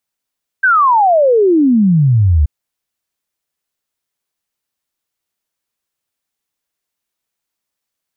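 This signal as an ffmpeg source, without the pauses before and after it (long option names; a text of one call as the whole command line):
ffmpeg -f lavfi -i "aevalsrc='0.447*clip(min(t,1.83-t)/0.01,0,1)*sin(2*PI*1600*1.83/log(69/1600)*(exp(log(69/1600)*t/1.83)-1))':duration=1.83:sample_rate=44100" out.wav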